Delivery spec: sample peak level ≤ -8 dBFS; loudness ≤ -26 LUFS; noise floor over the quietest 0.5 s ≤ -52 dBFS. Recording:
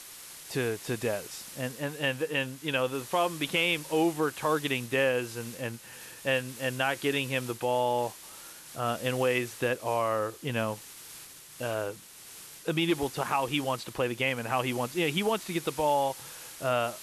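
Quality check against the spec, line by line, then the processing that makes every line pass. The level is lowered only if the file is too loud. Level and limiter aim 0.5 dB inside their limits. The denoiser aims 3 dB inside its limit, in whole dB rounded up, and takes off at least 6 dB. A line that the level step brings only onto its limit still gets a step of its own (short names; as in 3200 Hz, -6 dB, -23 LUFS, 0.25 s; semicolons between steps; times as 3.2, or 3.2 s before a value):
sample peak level -13.5 dBFS: OK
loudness -30.0 LUFS: OK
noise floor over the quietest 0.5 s -48 dBFS: fail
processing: denoiser 7 dB, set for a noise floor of -48 dBFS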